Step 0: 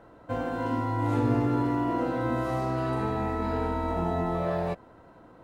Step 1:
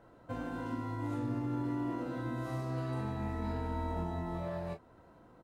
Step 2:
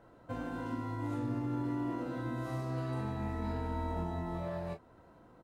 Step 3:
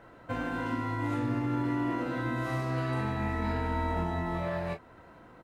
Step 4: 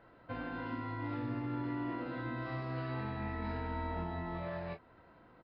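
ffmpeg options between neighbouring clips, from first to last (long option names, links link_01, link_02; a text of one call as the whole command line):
ffmpeg -i in.wav -filter_complex "[0:a]alimiter=limit=-22dB:level=0:latency=1:release=399,bass=frequency=250:gain=3,treble=frequency=4000:gain=4,asplit=2[link_01][link_02];[link_02]aecho=0:1:24|38:0.422|0.237[link_03];[link_01][link_03]amix=inputs=2:normalize=0,volume=-8dB" out.wav
ffmpeg -i in.wav -af anull out.wav
ffmpeg -i in.wav -af "equalizer=frequency=2100:width=0.91:gain=8.5,volume=4.5dB" out.wav
ffmpeg -i in.wav -af "aresample=11025,aresample=44100,volume=-7.5dB" out.wav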